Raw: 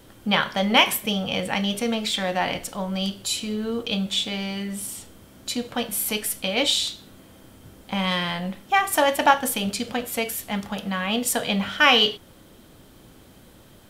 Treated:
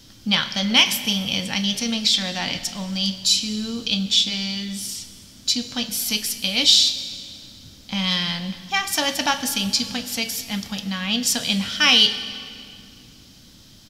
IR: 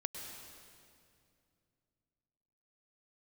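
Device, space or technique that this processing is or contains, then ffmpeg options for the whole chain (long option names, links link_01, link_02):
saturated reverb return: -filter_complex "[0:a]firequalizer=gain_entry='entry(270,0);entry(390,-10);entry(5200,15);entry(8600,-2)':delay=0.05:min_phase=1,asplit=2[link_01][link_02];[1:a]atrim=start_sample=2205[link_03];[link_02][link_03]afir=irnorm=-1:irlink=0,asoftclip=type=tanh:threshold=-12dB,volume=-6dB[link_04];[link_01][link_04]amix=inputs=2:normalize=0,volume=-2dB"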